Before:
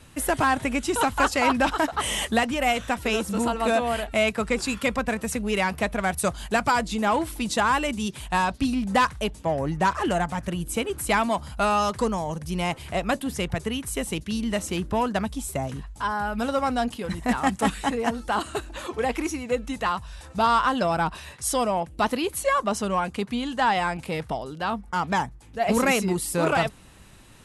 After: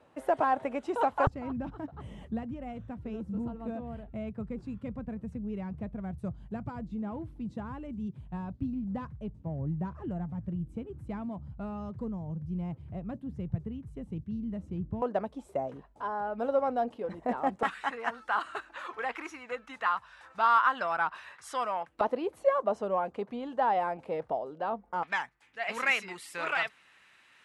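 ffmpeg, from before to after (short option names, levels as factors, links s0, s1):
-af "asetnsamples=n=441:p=0,asendcmd='1.27 bandpass f 120;15.02 bandpass f 540;17.63 bandpass f 1400;22.01 bandpass f 580;25.03 bandpass f 2000',bandpass=f=630:t=q:w=1.7:csg=0"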